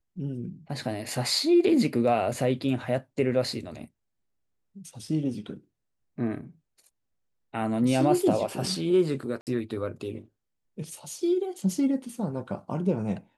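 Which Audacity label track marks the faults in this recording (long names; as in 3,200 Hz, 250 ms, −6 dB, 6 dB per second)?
1.390000	1.390000	drop-out 2.4 ms
9.410000	9.470000	drop-out 58 ms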